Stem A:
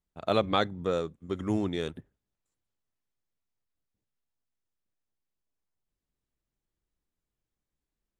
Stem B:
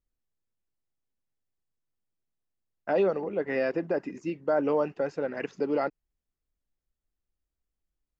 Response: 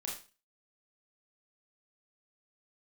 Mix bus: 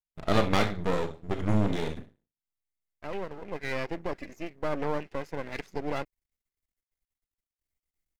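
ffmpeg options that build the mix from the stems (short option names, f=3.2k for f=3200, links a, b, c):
-filter_complex "[0:a]agate=range=-29dB:threshold=-49dB:ratio=16:detection=peak,lowshelf=f=160:g=11.5,volume=1dB,asplit=3[a][b][c];[b]volume=-3.5dB[d];[1:a]highshelf=f=5.3k:g=8.5,adelay=150,volume=-1.5dB[e];[c]apad=whole_len=368127[f];[e][f]sidechaincompress=threshold=-41dB:ratio=8:attack=9.5:release=1390[g];[2:a]atrim=start_sample=2205[h];[d][h]afir=irnorm=-1:irlink=0[i];[a][g][i]amix=inputs=3:normalize=0,equalizer=f=2.1k:t=o:w=0.23:g=12.5,aeval=exprs='max(val(0),0)':c=same"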